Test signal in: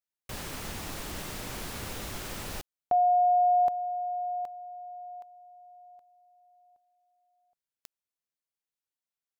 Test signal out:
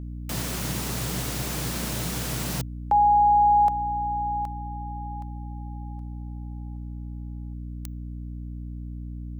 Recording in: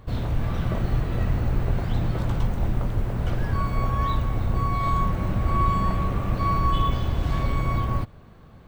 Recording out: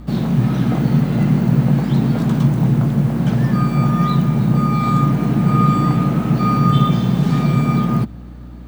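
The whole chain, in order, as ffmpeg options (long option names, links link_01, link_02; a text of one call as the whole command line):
ffmpeg -i in.wav -af "afreqshift=110,bass=frequency=250:gain=4,treble=frequency=4000:gain=5,aeval=exprs='val(0)+0.0126*(sin(2*PI*60*n/s)+sin(2*PI*2*60*n/s)/2+sin(2*PI*3*60*n/s)/3+sin(2*PI*4*60*n/s)/4+sin(2*PI*5*60*n/s)/5)':channel_layout=same,volume=4.5dB" out.wav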